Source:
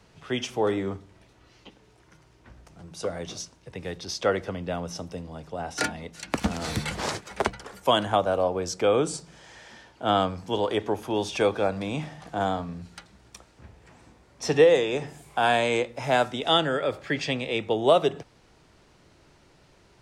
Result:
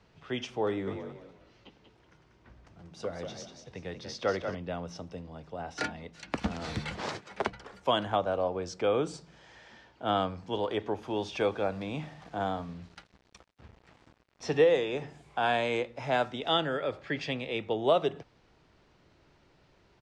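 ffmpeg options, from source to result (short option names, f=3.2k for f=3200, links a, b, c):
-filter_complex "[0:a]asplit=3[a][b][c];[a]afade=t=out:st=0.86:d=0.02[d];[b]asplit=5[e][f][g][h][i];[f]adelay=188,afreqshift=41,volume=-7dB[j];[g]adelay=376,afreqshift=82,volume=-17.5dB[k];[h]adelay=564,afreqshift=123,volume=-27.9dB[l];[i]adelay=752,afreqshift=164,volume=-38.4dB[m];[e][j][k][l][m]amix=inputs=5:normalize=0,afade=t=in:st=0.86:d=0.02,afade=t=out:st=4.54:d=0.02[n];[c]afade=t=in:st=4.54:d=0.02[o];[d][n][o]amix=inputs=3:normalize=0,asettb=1/sr,asplit=3[p][q][r];[p]atrim=end=6.964[s];[q]atrim=start=6.96:end=7.52,asetpts=PTS-STARTPTS,afade=t=in:d=0.004:c=qsin,afade=t=out:st=0.556:d=0.004:c=qsin,highpass=99[t];[r]atrim=start=7.516[u];[s][t]acrossfade=d=0.004:c1=hsin:c2=qsin[v];[v][u]acrossfade=d=0.004:c1=qsin:c2=hsin,asettb=1/sr,asplit=3[w][x][y];[w]atrim=end=11.014[z];[x]atrim=start=11.01:end=14.85,asetpts=PTS-STARTPTS,afade=t=in:d=0.004:c=qsin,afade=t=out:st=3.836:d=0.004:c=qsin,acrusher=bits=7:mix=0:aa=0.5[aa];[y]atrim=start=14.846[ab];[z][aa]acrossfade=d=0.004:c1=hsin:c2=qsin[ac];[ac][ab]acrossfade=d=0.004:c1=qsin:c2=hsin,lowpass=4.8k,volume=-5.5dB"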